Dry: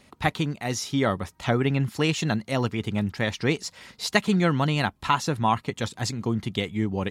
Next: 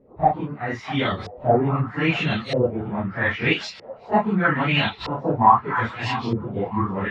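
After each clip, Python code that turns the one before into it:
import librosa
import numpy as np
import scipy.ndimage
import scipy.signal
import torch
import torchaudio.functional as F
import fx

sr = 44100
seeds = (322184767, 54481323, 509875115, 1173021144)

y = fx.phase_scramble(x, sr, seeds[0], window_ms=100)
y = fx.echo_stepped(y, sr, ms=649, hz=970.0, octaves=0.7, feedback_pct=70, wet_db=-6)
y = fx.filter_lfo_lowpass(y, sr, shape='saw_up', hz=0.79, low_hz=440.0, high_hz=4700.0, q=3.8)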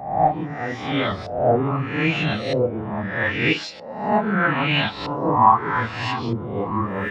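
y = fx.spec_swells(x, sr, rise_s=0.71)
y = fx.rev_fdn(y, sr, rt60_s=0.35, lf_ratio=1.0, hf_ratio=0.6, size_ms=20.0, drr_db=17.0)
y = F.gain(torch.from_numpy(y), -2.0).numpy()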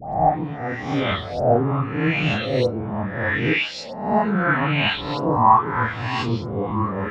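y = fx.low_shelf(x, sr, hz=72.0, db=8.0)
y = fx.dispersion(y, sr, late='highs', ms=146.0, hz=1800.0)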